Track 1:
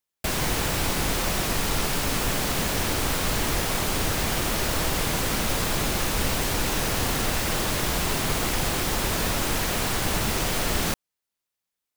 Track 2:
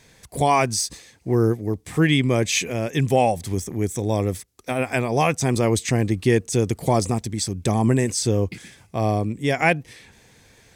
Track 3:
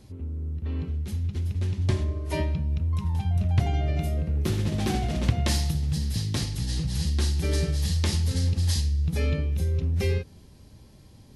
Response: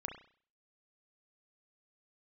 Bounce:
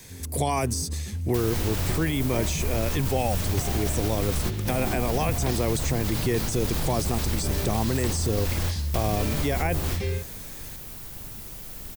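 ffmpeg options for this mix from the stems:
-filter_complex "[0:a]lowshelf=frequency=260:gain=11,adelay=1100,volume=-7dB[link_01];[1:a]volume=2dB,asplit=2[link_02][link_03];[2:a]volume=-2.5dB[link_04];[link_03]apad=whole_len=575966[link_05];[link_01][link_05]sidechaingate=range=-17dB:threshold=-39dB:ratio=16:detection=peak[link_06];[link_06][link_02]amix=inputs=2:normalize=0,aemphasis=mode=production:type=50fm,alimiter=limit=-12dB:level=0:latency=1:release=19,volume=0dB[link_07];[link_04][link_07]amix=inputs=2:normalize=0,acrossover=split=430|1200|6400[link_08][link_09][link_10][link_11];[link_08]acompressor=threshold=-23dB:ratio=4[link_12];[link_09]acompressor=threshold=-27dB:ratio=4[link_13];[link_10]acompressor=threshold=-35dB:ratio=4[link_14];[link_11]acompressor=threshold=-36dB:ratio=4[link_15];[link_12][link_13][link_14][link_15]amix=inputs=4:normalize=0"

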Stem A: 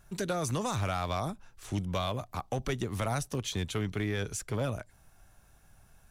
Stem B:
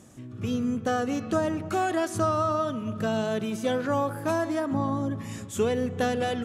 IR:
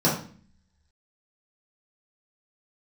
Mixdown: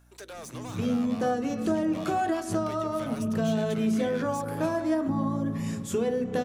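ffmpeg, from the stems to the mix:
-filter_complex "[0:a]highpass=frequency=420:width=0.5412,highpass=frequency=420:width=1.3066,asoftclip=type=tanh:threshold=-36.5dB,volume=-2.5dB[link_01];[1:a]acompressor=threshold=-27dB:ratio=6,adelay=350,volume=-1.5dB,asplit=2[link_02][link_03];[link_03]volume=-20.5dB[link_04];[2:a]atrim=start_sample=2205[link_05];[link_04][link_05]afir=irnorm=-1:irlink=0[link_06];[link_01][link_02][link_06]amix=inputs=3:normalize=0,aeval=exprs='val(0)+0.00126*(sin(2*PI*60*n/s)+sin(2*PI*2*60*n/s)/2+sin(2*PI*3*60*n/s)/3+sin(2*PI*4*60*n/s)/4+sin(2*PI*5*60*n/s)/5)':channel_layout=same"

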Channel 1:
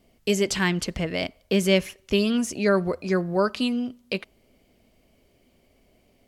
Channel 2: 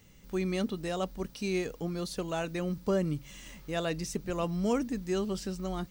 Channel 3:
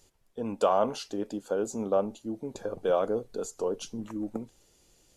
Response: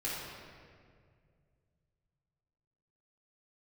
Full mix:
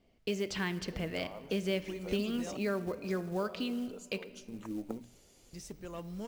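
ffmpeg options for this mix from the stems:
-filter_complex "[0:a]lowpass=5200,acompressor=threshold=-25dB:ratio=2.5,volume=-8dB,asplit=3[link_01][link_02][link_03];[link_02]volume=-16.5dB[link_04];[1:a]acontrast=48,asoftclip=type=tanh:threshold=-17.5dB,adelay=1550,volume=-16dB,asplit=3[link_05][link_06][link_07];[link_05]atrim=end=2.57,asetpts=PTS-STARTPTS,afade=type=out:start_time=2.566:duration=0.004:curve=hsin[link_08];[link_06]atrim=start=2.57:end=5.53,asetpts=PTS-STARTPTS,volume=0[link_09];[link_07]atrim=start=5.53,asetpts=PTS-STARTPTS,afade=type=in:duration=0.004:curve=hsin[link_10];[link_08][link_09][link_10]concat=n=3:v=0:a=1,asplit=2[link_11][link_12];[link_12]volume=-20dB[link_13];[2:a]bandreject=frequency=60:width_type=h:width=6,bandreject=frequency=120:width_type=h:width=6,bandreject=frequency=180:width_type=h:width=6,bandreject=frequency=240:width_type=h:width=6,bandreject=frequency=300:width_type=h:width=6,acompressor=threshold=-36dB:ratio=3,adelay=550,volume=0.5dB[link_14];[link_03]apad=whole_len=251860[link_15];[link_14][link_15]sidechaincompress=threshold=-46dB:ratio=8:attack=16:release=608[link_16];[3:a]atrim=start_sample=2205[link_17];[link_04][link_13]amix=inputs=2:normalize=0[link_18];[link_18][link_17]afir=irnorm=-1:irlink=0[link_19];[link_01][link_11][link_16][link_19]amix=inputs=4:normalize=0,acrusher=bits=6:mode=log:mix=0:aa=0.000001"

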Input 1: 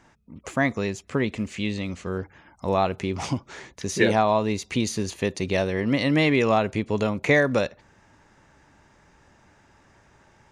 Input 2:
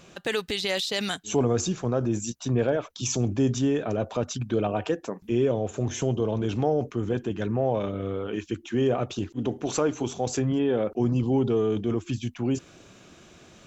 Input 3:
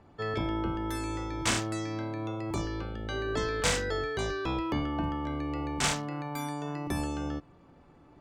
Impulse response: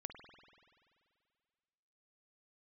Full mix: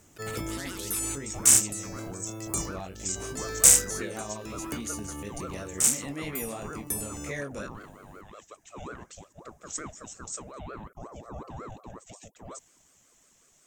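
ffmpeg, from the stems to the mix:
-filter_complex "[0:a]flanger=delay=19:depth=3:speed=3,volume=-12.5dB,asplit=2[link_01][link_02];[1:a]highpass=210,aeval=exprs='val(0)*sin(2*PI*630*n/s+630*0.5/5.5*sin(2*PI*5.5*n/s))':channel_layout=same,volume=-11.5dB[link_03];[2:a]aemphasis=mode=production:type=cd,bandreject=frequency=3300:width=23,volume=-2.5dB[link_04];[link_02]apad=whole_len=361987[link_05];[link_04][link_05]sidechaincompress=threshold=-45dB:ratio=8:attack=25:release=217[link_06];[link_01][link_03][link_06]amix=inputs=3:normalize=0,equalizer=frequency=880:width_type=o:width=0.91:gain=-6,aexciter=amount=8.3:drive=3.6:freq=6200"

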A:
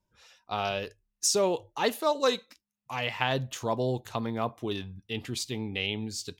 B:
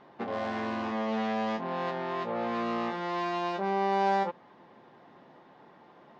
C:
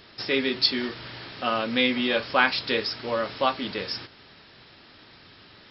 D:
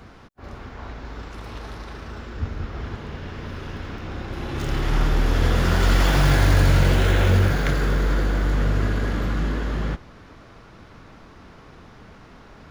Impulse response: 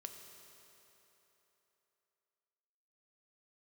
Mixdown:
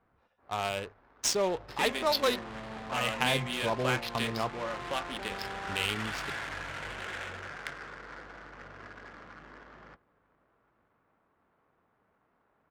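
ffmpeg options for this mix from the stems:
-filter_complex "[0:a]acrusher=bits=4:mode=log:mix=0:aa=0.000001,volume=-0.5dB,asplit=3[link_01][link_02][link_03];[link_01]atrim=end=4.57,asetpts=PTS-STARTPTS,afade=type=out:start_time=4.566:duration=0.004:curve=hsin[link_04];[link_02]atrim=start=4.57:end=5.69,asetpts=PTS-STARTPTS,volume=0[link_05];[link_03]atrim=start=5.69,asetpts=PTS-STARTPTS,afade=type=in:duration=0.004:curve=hsin[link_06];[link_04][link_05][link_06]concat=n=3:v=0:a=1,asplit=2[link_07][link_08];[link_08]volume=-22dB[link_09];[1:a]acompressor=threshold=-36dB:ratio=3,adelay=1600,volume=-4dB[link_10];[2:a]adynamicequalizer=threshold=0.0126:dfrequency=2900:dqfactor=0.84:tfrequency=2900:tqfactor=0.84:attack=5:release=100:ratio=0.375:range=3:mode=boostabove:tftype=bell,acompressor=threshold=-33dB:ratio=2,aeval=exprs='val(0)+0.00282*(sin(2*PI*50*n/s)+sin(2*PI*2*50*n/s)/2+sin(2*PI*3*50*n/s)/3+sin(2*PI*4*50*n/s)/4+sin(2*PI*5*50*n/s)/5)':channel_layout=same,adelay=1500,volume=-2.5dB[link_11];[3:a]bandpass=frequency=2800:width_type=q:width=0.62:csg=0,volume=-7dB,asplit=2[link_12][link_13];[link_13]volume=-22.5dB[link_14];[link_09][link_14]amix=inputs=2:normalize=0,aecho=0:1:934:1[link_15];[link_07][link_10][link_11][link_12][link_15]amix=inputs=5:normalize=0,equalizer=frequency=290:width=0.55:gain=-4,adynamicsmooth=sensitivity=6.5:basefreq=650"

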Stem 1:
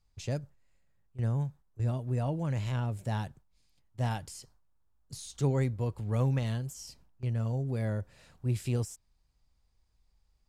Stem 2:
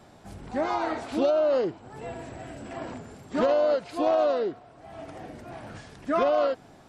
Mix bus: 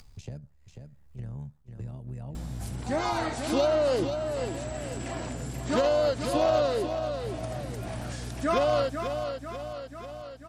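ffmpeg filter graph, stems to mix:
ffmpeg -i stem1.wav -i stem2.wav -filter_complex "[0:a]acrossover=split=160|860[link_01][link_02][link_03];[link_01]acompressor=threshold=-32dB:ratio=4[link_04];[link_02]acompressor=threshold=-41dB:ratio=4[link_05];[link_03]acompressor=threshold=-53dB:ratio=4[link_06];[link_04][link_05][link_06]amix=inputs=3:normalize=0,tremolo=f=73:d=0.667,volume=-9.5dB,asplit=2[link_07][link_08];[link_08]volume=-15dB[link_09];[1:a]crystalizer=i=4:c=0,aeval=exprs='val(0)+0.0126*(sin(2*PI*60*n/s)+sin(2*PI*2*60*n/s)/2+sin(2*PI*3*60*n/s)/3+sin(2*PI*4*60*n/s)/4+sin(2*PI*5*60*n/s)/5)':channel_layout=same,adelay=2350,volume=-3dB,asplit=2[link_10][link_11];[link_11]volume=-7.5dB[link_12];[link_09][link_12]amix=inputs=2:normalize=0,aecho=0:1:491|982|1473|1964|2455:1|0.35|0.122|0.0429|0.015[link_13];[link_07][link_10][link_13]amix=inputs=3:normalize=0,lowshelf=frequency=320:gain=3,acompressor=mode=upward:threshold=-30dB:ratio=2.5" out.wav

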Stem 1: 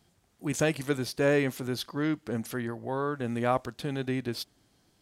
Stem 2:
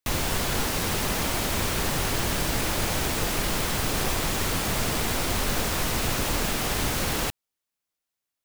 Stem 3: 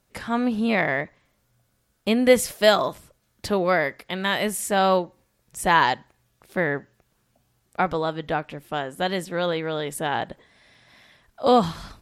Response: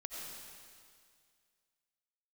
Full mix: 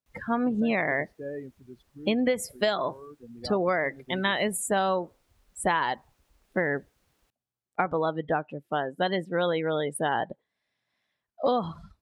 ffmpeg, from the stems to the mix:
-filter_complex "[0:a]volume=-10.5dB[link_01];[1:a]volume=-18.5dB[link_02];[2:a]volume=1.5dB[link_03];[link_01][link_02][link_03]amix=inputs=3:normalize=0,afftdn=noise_reduction=26:noise_floor=-29,highpass=frequency=130:poles=1,acompressor=threshold=-21dB:ratio=16"

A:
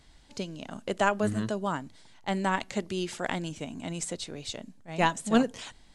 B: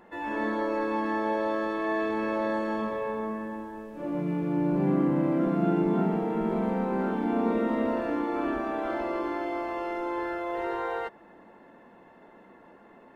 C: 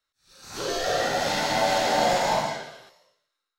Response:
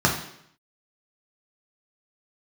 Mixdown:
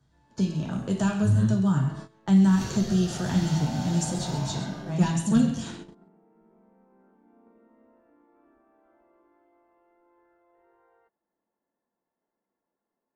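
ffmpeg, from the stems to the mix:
-filter_complex "[0:a]equalizer=frequency=120:width=2.2:gain=5,asoftclip=type=tanh:threshold=-15dB,volume=-3.5dB,asplit=3[link_01][link_02][link_03];[link_02]volume=-7.5dB[link_04];[link_03]volume=-7.5dB[link_05];[1:a]lowpass=1900,volume=-15dB[link_06];[2:a]lowshelf=frequency=120:gain=11.5,acompressor=threshold=-29dB:ratio=4,adelay=2050,volume=-7.5dB,asplit=2[link_07][link_08];[link_08]volume=-10.5dB[link_09];[3:a]atrim=start_sample=2205[link_10];[link_04][link_09]amix=inputs=2:normalize=0[link_11];[link_11][link_10]afir=irnorm=-1:irlink=0[link_12];[link_05]aecho=0:1:133:1[link_13];[link_01][link_06][link_07][link_12][link_13]amix=inputs=5:normalize=0,agate=range=-18dB:threshold=-36dB:ratio=16:detection=peak,acrossover=split=210|3000[link_14][link_15][link_16];[link_15]acompressor=threshold=-37dB:ratio=3[link_17];[link_14][link_17][link_16]amix=inputs=3:normalize=0"

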